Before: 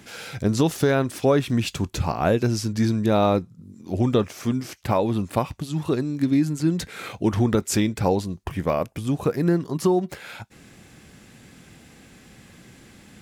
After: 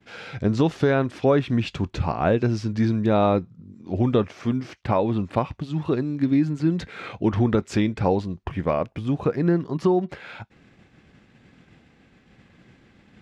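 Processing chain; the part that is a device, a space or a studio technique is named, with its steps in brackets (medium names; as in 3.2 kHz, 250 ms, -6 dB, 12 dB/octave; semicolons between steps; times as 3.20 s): hearing-loss simulation (low-pass 3.3 kHz 12 dB/octave; expander -43 dBFS)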